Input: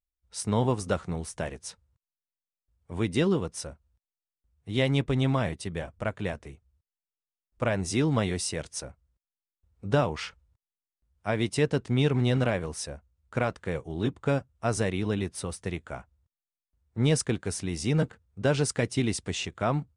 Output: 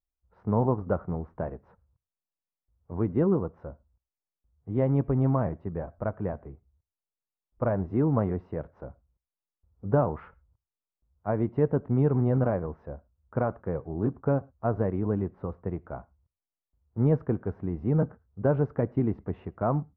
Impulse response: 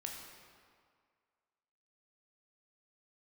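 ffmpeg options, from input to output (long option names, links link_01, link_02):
-filter_complex "[0:a]lowpass=frequency=1200:width=0.5412,lowpass=frequency=1200:width=1.3066,asplit=2[link_01][link_02];[1:a]atrim=start_sample=2205,atrim=end_sample=4410,asetrate=36162,aresample=44100[link_03];[link_02][link_03]afir=irnorm=-1:irlink=0,volume=-16dB[link_04];[link_01][link_04]amix=inputs=2:normalize=0"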